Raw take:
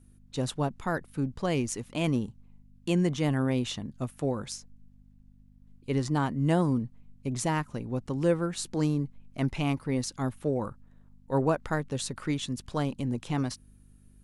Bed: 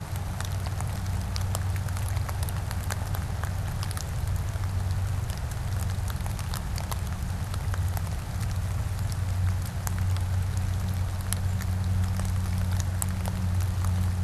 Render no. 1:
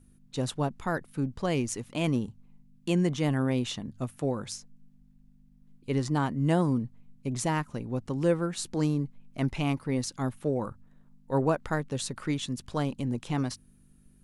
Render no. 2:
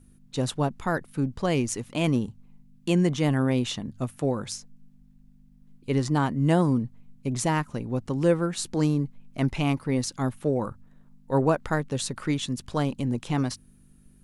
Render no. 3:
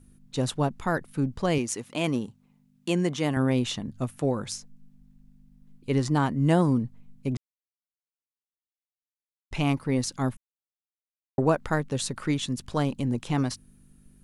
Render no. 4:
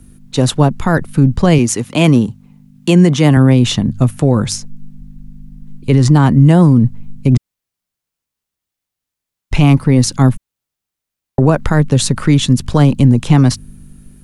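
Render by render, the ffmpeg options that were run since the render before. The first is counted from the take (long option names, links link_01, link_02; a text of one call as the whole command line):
ffmpeg -i in.wav -af "bandreject=frequency=50:width_type=h:width=4,bandreject=frequency=100:width_type=h:width=4" out.wav
ffmpeg -i in.wav -af "volume=3.5dB" out.wav
ffmpeg -i in.wav -filter_complex "[0:a]asettb=1/sr,asplit=3[link_01][link_02][link_03];[link_01]atrim=end=1.584[link_04];[link_02]atrim=start=1.58:end=3.37,asetpts=PTS-STARTPTS,afade=type=in:duration=0.004:curve=qsin,afade=type=out:start_time=1.786:duration=0.004:curve=qsin,highpass=frequency=250:poles=1[link_05];[link_03]atrim=start=3.366[link_06];[link_04][link_05]acrossfade=duration=0.004:curve1=hsin:curve2=qsin[link_07];[link_07][link_06]acrossfade=duration=0.004:curve1=qsin:curve2=hsin,asplit=5[link_08][link_09][link_10][link_11][link_12];[link_08]atrim=end=7.37,asetpts=PTS-STARTPTS,afade=type=out:start_time=7.366:duration=0.004:curve=hsin[link_13];[link_09]atrim=start=7.37:end=9.51,asetpts=PTS-STARTPTS,volume=0[link_14];[link_10]atrim=start=9.51:end=10.37,asetpts=PTS-STARTPTS,afade=type=in:duration=0.004:curve=hsin,afade=type=out:start_time=0.856:duration=0.004:curve=hsin[link_15];[link_11]atrim=start=10.37:end=11.38,asetpts=PTS-STARTPTS,volume=0[link_16];[link_12]atrim=start=11.38,asetpts=PTS-STARTPTS,afade=type=in:duration=0.004:curve=hsin[link_17];[link_13][link_14][link_15][link_16][link_17]concat=n=5:v=0:a=1" out.wav
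ffmpeg -i in.wav -filter_complex "[0:a]acrossover=split=210|500|4700[link_01][link_02][link_03][link_04];[link_01]dynaudnorm=framelen=270:gausssize=5:maxgain=8.5dB[link_05];[link_05][link_02][link_03][link_04]amix=inputs=4:normalize=0,alimiter=level_in=14dB:limit=-1dB:release=50:level=0:latency=1" out.wav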